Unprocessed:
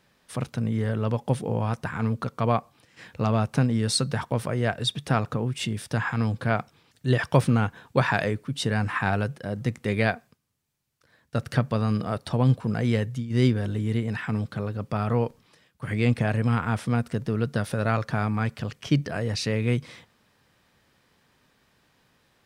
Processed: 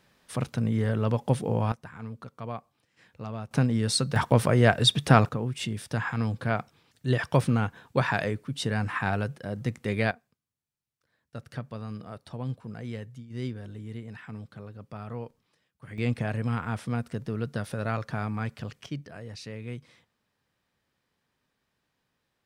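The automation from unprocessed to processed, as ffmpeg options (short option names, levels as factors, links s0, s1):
-af "asetnsamples=n=441:p=0,asendcmd='1.72 volume volume -13dB;3.51 volume volume -1.5dB;4.16 volume volume 5.5dB;5.29 volume volume -3dB;10.11 volume volume -13dB;15.98 volume volume -5.5dB;18.86 volume volume -13.5dB',volume=1"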